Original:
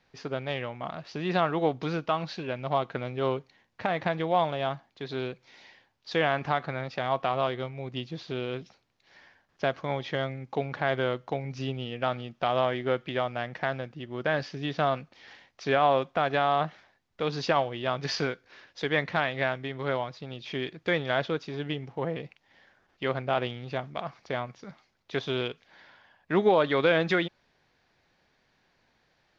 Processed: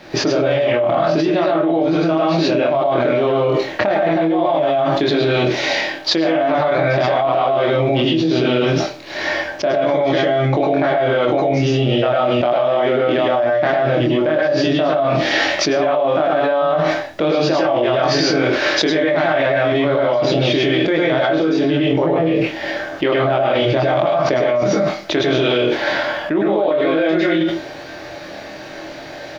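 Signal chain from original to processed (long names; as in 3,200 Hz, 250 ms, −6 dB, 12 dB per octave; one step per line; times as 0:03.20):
low-shelf EQ 83 Hz −6.5 dB
double-tracking delay 25 ms −2 dB
hollow resonant body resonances 330/590 Hz, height 16 dB, ringing for 70 ms
convolution reverb RT60 0.30 s, pre-delay 92 ms, DRR −5.5 dB
envelope flattener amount 100%
level −15 dB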